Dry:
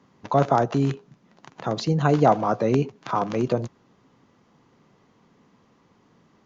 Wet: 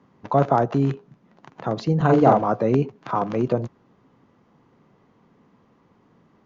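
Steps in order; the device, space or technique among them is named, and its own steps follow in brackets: through cloth (high shelf 3500 Hz -13 dB); 1.96–2.42 doubler 44 ms -2.5 dB; gain +1.5 dB

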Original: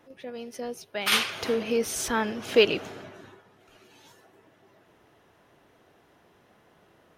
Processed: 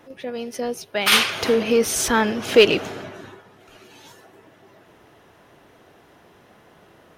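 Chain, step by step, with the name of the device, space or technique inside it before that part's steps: parallel distortion (in parallel at -5 dB: hard clip -22 dBFS, distortion -7 dB); on the sum: gain +4.5 dB

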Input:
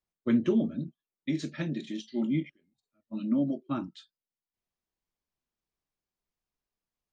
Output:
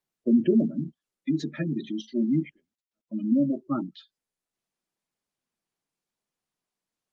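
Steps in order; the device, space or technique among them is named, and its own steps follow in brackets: 2.36–3.76 gate with hold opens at -54 dBFS; noise-suppressed video call (HPF 130 Hz 24 dB/oct; spectral gate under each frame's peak -20 dB strong; gain +4.5 dB; Opus 32 kbps 48000 Hz)

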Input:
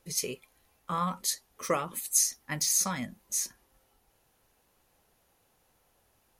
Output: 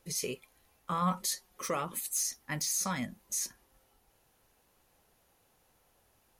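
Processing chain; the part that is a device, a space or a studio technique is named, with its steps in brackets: soft clipper into limiter (soft clip -15.5 dBFS, distortion -22 dB; limiter -24 dBFS, peak gain reduction 7.5 dB); 1.01–1.63 comb 5.5 ms, depth 67%

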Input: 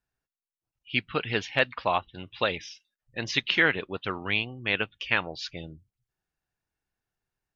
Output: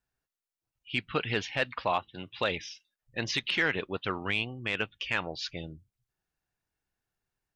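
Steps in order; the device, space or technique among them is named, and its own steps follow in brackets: soft clipper into limiter (soft clip -10 dBFS, distortion -22 dB; limiter -17 dBFS, peak gain reduction 5.5 dB); 1.92–2.38 HPF 110 Hz

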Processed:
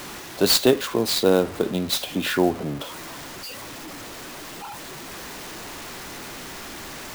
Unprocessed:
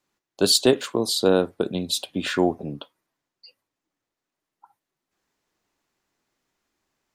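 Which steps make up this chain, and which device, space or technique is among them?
early CD player with a faulty converter (zero-crossing step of -30 dBFS; clock jitter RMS 0.02 ms)

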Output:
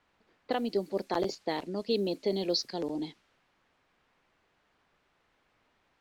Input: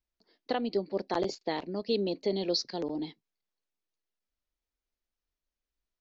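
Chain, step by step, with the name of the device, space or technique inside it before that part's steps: cassette deck with a dynamic noise filter (white noise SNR 27 dB; low-pass opened by the level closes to 1900 Hz, open at -27 dBFS)

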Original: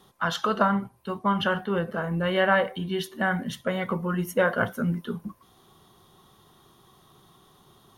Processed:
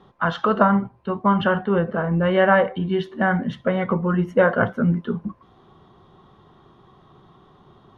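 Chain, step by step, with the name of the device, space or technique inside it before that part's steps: phone in a pocket (LPF 3300 Hz 12 dB/oct; high shelf 2200 Hz -10 dB); gain +7 dB

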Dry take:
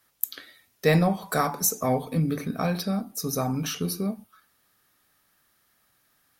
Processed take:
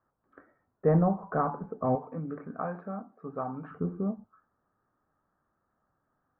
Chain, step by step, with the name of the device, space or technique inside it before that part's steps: 1.95–3.71 tilt +4 dB/oct; steep low-pass 1400 Hz 36 dB/oct; behind a face mask (high shelf 3400 Hz -7 dB); gain -2.5 dB

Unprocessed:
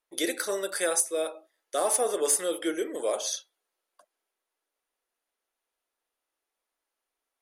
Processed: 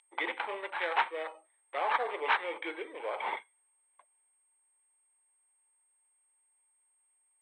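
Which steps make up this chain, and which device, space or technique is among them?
toy sound module (decimation joined by straight lines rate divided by 8×; pulse-width modulation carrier 8500 Hz; speaker cabinet 620–3700 Hz, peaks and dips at 630 Hz -6 dB, 890 Hz +9 dB, 1400 Hz -4 dB, 2200 Hz +8 dB, 3400 Hz +7 dB); gain -2.5 dB

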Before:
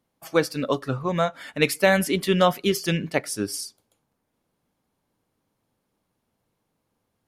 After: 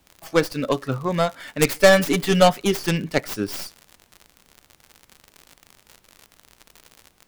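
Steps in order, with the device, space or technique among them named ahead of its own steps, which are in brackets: record under a worn stylus (tracing distortion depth 0.24 ms; crackle 80/s -32 dBFS; pink noise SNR 37 dB); 1.75–2.5 comb 6.9 ms, depth 69%; gain +1.5 dB

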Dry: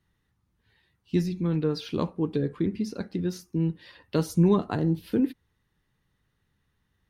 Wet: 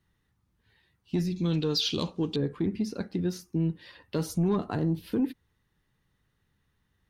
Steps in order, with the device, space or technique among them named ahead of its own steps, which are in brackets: 1.36–2.36 band shelf 4700 Hz +15.5 dB; soft clipper into limiter (soft clip -15 dBFS, distortion -19 dB; limiter -20 dBFS, peak gain reduction 4 dB)

